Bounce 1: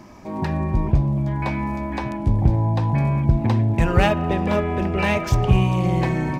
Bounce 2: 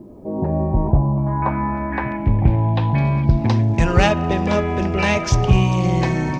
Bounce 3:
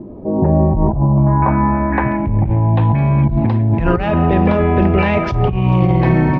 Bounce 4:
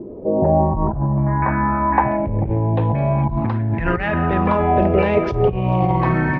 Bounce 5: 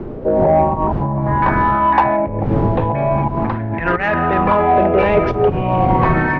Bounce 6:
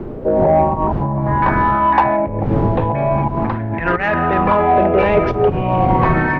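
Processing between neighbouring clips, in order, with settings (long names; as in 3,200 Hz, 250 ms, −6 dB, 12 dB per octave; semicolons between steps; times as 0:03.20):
low-pass filter sweep 410 Hz → 6,100 Hz, 0:00.01–0:03.63; bit reduction 12 bits; level +2 dB
compressor whose output falls as the input rises −19 dBFS, ratio −1; high-frequency loss of the air 440 metres; level +6.5 dB
auto-filter bell 0.38 Hz 430–1,900 Hz +13 dB; level −6 dB
wind on the microphone 140 Hz −21 dBFS; mid-hump overdrive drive 14 dB, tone 1,700 Hz, clips at −1 dBFS
bit-depth reduction 12 bits, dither none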